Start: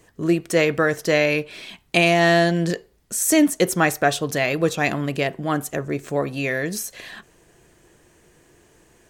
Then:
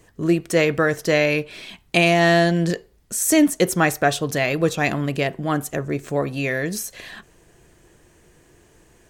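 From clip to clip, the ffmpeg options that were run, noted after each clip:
-af "lowshelf=f=110:g=6"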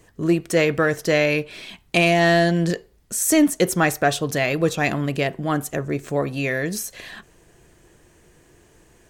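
-af "asoftclip=type=tanh:threshold=-3.5dB"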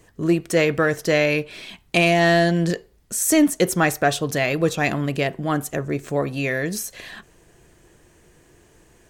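-af anull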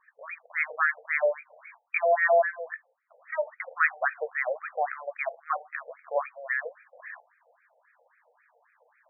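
-af "afftfilt=real='re*between(b*sr/1024,610*pow(1800/610,0.5+0.5*sin(2*PI*3.7*pts/sr))/1.41,610*pow(1800/610,0.5+0.5*sin(2*PI*3.7*pts/sr))*1.41)':imag='im*between(b*sr/1024,610*pow(1800/610,0.5+0.5*sin(2*PI*3.7*pts/sr))/1.41,610*pow(1800/610,0.5+0.5*sin(2*PI*3.7*pts/sr))*1.41)':win_size=1024:overlap=0.75"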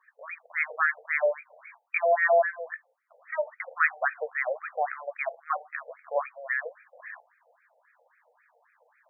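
-af "highpass=f=370:w=0.5412,highpass=f=370:w=1.3066"

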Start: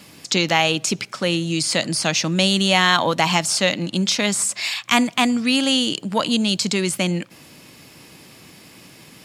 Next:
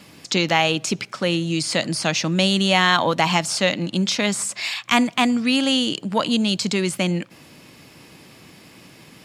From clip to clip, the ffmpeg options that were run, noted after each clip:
-af "highshelf=f=5k:g=-6"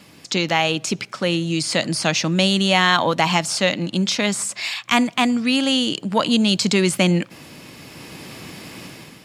-af "dynaudnorm=f=520:g=3:m=11dB,volume=-1dB"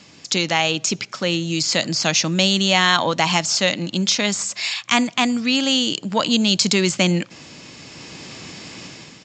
-af "aemphasis=mode=production:type=50fm,aresample=16000,aresample=44100,volume=-1dB"

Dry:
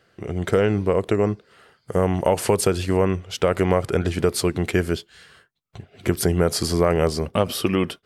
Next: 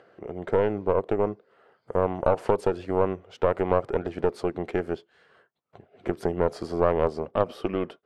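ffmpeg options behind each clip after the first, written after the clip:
-af "acompressor=mode=upward:threshold=-39dB:ratio=2.5,bandpass=f=600:t=q:w=0.98:csg=0,aeval=exprs='0.447*(cos(1*acos(clip(val(0)/0.447,-1,1)))-cos(1*PI/2))+0.141*(cos(2*acos(clip(val(0)/0.447,-1,1)))-cos(2*PI/2))+0.0126*(cos(6*acos(clip(val(0)/0.447,-1,1)))-cos(6*PI/2))':c=same,volume=-2.5dB"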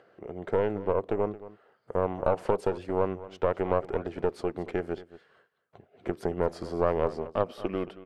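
-af "aecho=1:1:224:0.15,volume=-3.5dB"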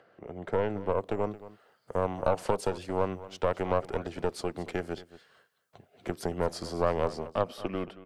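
-filter_complex "[0:a]equalizer=f=390:w=2.2:g=-4.5,acrossover=split=190|3800[a][b][c];[c]dynaudnorm=f=190:g=9:m=11dB[d];[a][b][d]amix=inputs=3:normalize=0"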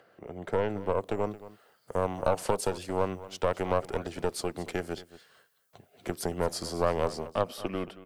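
-af "crystalizer=i=1.5:c=0"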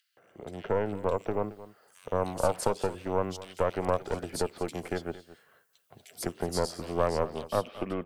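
-filter_complex "[0:a]acrossover=split=2700[a][b];[a]adelay=170[c];[c][b]amix=inputs=2:normalize=0"

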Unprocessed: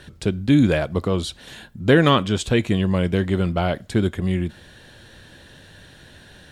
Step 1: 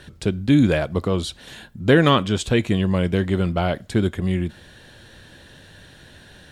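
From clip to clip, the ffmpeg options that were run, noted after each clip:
-af anull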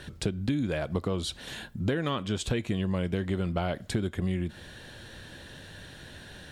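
-af "acompressor=threshold=-25dB:ratio=16"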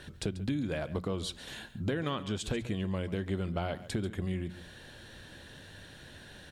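-af "bandreject=f=60:t=h:w=6,bandreject=f=120:t=h:w=6,bandreject=f=180:t=h:w=6,aecho=1:1:139:0.168,volume=-4dB"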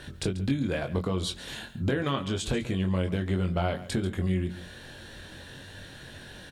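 -filter_complex "[0:a]asplit=2[a][b];[b]adelay=22,volume=-5.5dB[c];[a][c]amix=inputs=2:normalize=0,volume=4dB"

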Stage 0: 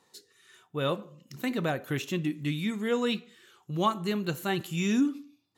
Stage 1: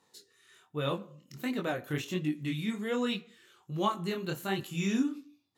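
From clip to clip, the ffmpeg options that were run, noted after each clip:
-af "flanger=delay=20:depth=7.1:speed=1.3"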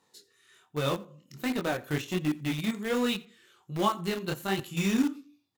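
-filter_complex "[0:a]asplit=2[a][b];[b]acrusher=bits=4:mix=0:aa=0.000001,volume=-8dB[c];[a][c]amix=inputs=2:normalize=0,aecho=1:1:86:0.0668"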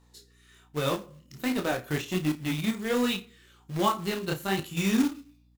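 -filter_complex "[0:a]acrusher=bits=4:mode=log:mix=0:aa=0.000001,asplit=2[a][b];[b]adelay=32,volume=-10dB[c];[a][c]amix=inputs=2:normalize=0,aeval=exprs='val(0)+0.000891*(sin(2*PI*60*n/s)+sin(2*PI*2*60*n/s)/2+sin(2*PI*3*60*n/s)/3+sin(2*PI*4*60*n/s)/4+sin(2*PI*5*60*n/s)/5)':c=same,volume=1dB"

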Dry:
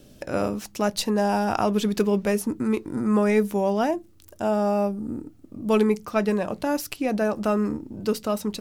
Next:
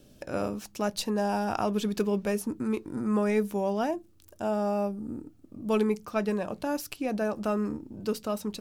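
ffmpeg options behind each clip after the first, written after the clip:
-af "bandreject=f=2k:w=17,volume=-5.5dB"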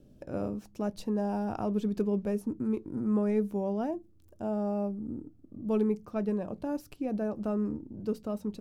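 -af "tiltshelf=f=860:g=8,volume=-7.5dB"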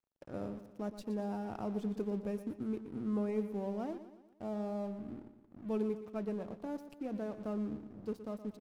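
-filter_complex "[0:a]aeval=exprs='sgn(val(0))*max(abs(val(0))-0.00335,0)':c=same,asplit=2[a][b];[b]aecho=0:1:119|238|357|476|595:0.251|0.123|0.0603|0.0296|0.0145[c];[a][c]amix=inputs=2:normalize=0,volume=-6.5dB"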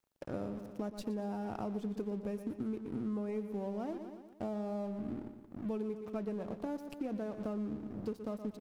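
-af "acompressor=threshold=-43dB:ratio=6,volume=8dB"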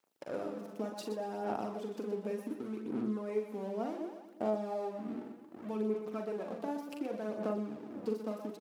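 -filter_complex "[0:a]asplit=2[a][b];[b]aecho=0:1:42|59|125:0.501|0.251|0.316[c];[a][c]amix=inputs=2:normalize=0,aphaser=in_gain=1:out_gain=1:delay=4.6:decay=0.41:speed=0.67:type=sinusoidal,highpass=280,volume=1.5dB"

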